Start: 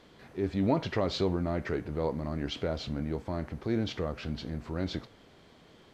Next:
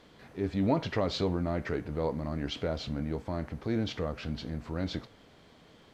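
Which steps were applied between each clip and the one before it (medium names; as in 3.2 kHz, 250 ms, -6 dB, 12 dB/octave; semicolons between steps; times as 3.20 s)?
band-stop 370 Hz, Q 12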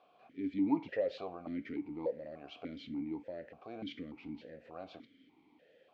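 stepped vowel filter 3.4 Hz; trim +3 dB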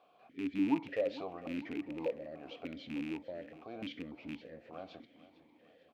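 rattle on loud lows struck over -45 dBFS, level -35 dBFS; feedback delay 452 ms, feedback 54%, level -17.5 dB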